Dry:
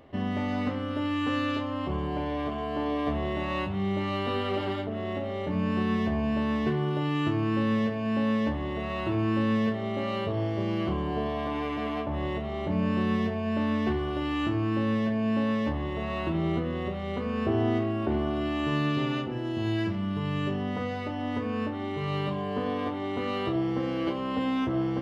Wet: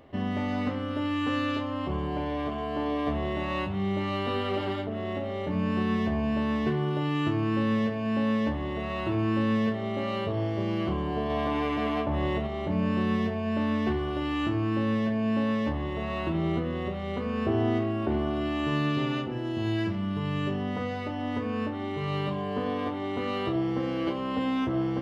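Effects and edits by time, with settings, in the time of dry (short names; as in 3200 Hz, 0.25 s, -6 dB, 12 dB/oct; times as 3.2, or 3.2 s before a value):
11.3–12.47 gain +3 dB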